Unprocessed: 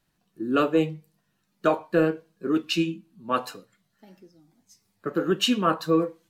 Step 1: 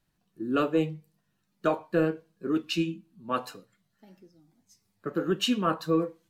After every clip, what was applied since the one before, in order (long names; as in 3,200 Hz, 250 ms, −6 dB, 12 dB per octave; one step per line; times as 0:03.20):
low-shelf EQ 170 Hz +5 dB
level −4.5 dB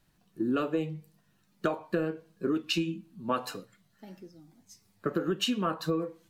downward compressor 10 to 1, threshold −32 dBFS, peak gain reduction 13.5 dB
level +6.5 dB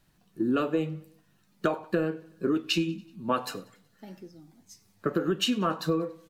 repeating echo 94 ms, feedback 57%, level −23.5 dB
level +2.5 dB